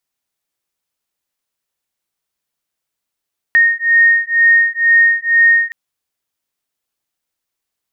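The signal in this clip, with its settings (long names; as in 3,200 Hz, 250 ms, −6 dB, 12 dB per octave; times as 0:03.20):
two tones that beat 1,850 Hz, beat 2.1 Hz, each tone −11.5 dBFS 2.17 s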